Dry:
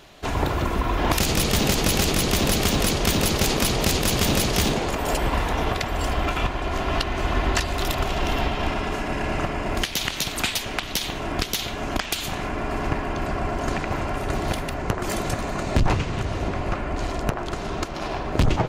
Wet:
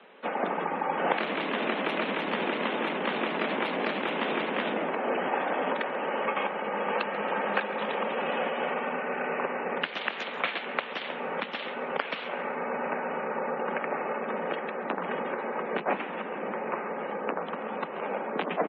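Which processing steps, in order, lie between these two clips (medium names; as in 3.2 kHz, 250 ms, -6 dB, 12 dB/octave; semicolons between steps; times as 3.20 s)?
median filter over 9 samples; steep high-pass 360 Hz 96 dB/octave; three-band isolator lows -12 dB, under 480 Hz, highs -16 dB, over 3.7 kHz; frequency shift -180 Hz; spectral gate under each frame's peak -25 dB strong; feedback delay 137 ms, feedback 41%, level -18 dB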